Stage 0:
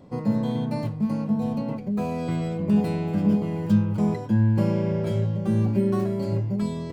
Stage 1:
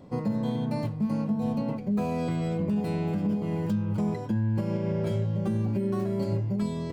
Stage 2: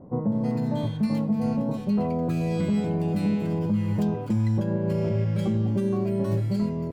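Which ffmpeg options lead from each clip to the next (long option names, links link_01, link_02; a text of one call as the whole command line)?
ffmpeg -i in.wav -af "alimiter=limit=-19.5dB:level=0:latency=1:release=211" out.wav
ffmpeg -i in.wav -filter_complex "[0:a]acrossover=split=1200[link_01][link_02];[link_02]adelay=320[link_03];[link_01][link_03]amix=inputs=2:normalize=0,volume=3dB" out.wav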